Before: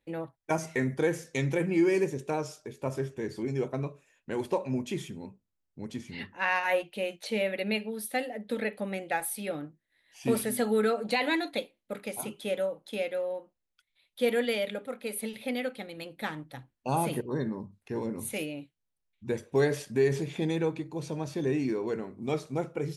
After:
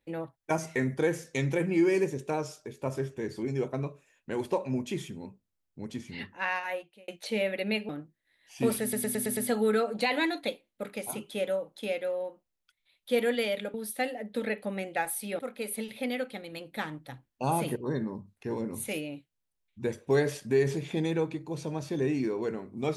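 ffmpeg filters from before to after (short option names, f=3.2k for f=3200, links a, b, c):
-filter_complex "[0:a]asplit=10[a][b][c][d][e][f][g][h][i][j];[a]atrim=end=7.08,asetpts=PTS-STARTPTS,afade=t=out:st=6.24:d=0.84[k];[b]atrim=start=7.08:end=7.892,asetpts=PTS-STARTPTS,afade=t=in:d=0.004:c=hsin[l];[c]atrim=start=9.538:end=10.582[m];[d]atrim=start=10.468:end=10.582[n];[e]atrim=start=10.468:end=10.582[o];[f]atrim=start=10.468:end=10.582[p];[g]atrim=start=10.468:end=10.582[q];[h]atrim=start=10.468:end=14.842[r];[i]atrim=start=7.888:end=9.542[s];[j]atrim=start=14.838[t];[k][l]concat=n=2:v=0:a=1[u];[u][m]acrossfade=d=0.004:c1=hsin:c2=hsin[v];[v][n]acrossfade=d=0.004:c1=hsin:c2=hsin[w];[w][o]acrossfade=d=0.004:c1=hsin:c2=hsin[x];[x][p]acrossfade=d=0.004:c1=hsin:c2=hsin[y];[y][q]acrossfade=d=0.004:c1=hsin:c2=hsin[z];[z][r]acrossfade=d=0.004:c1=hsin:c2=hsin[aa];[aa][s]acrossfade=d=0.004:c1=hsin:c2=hsin[ab];[ab][t]acrossfade=d=0.004:c1=hsin:c2=hsin"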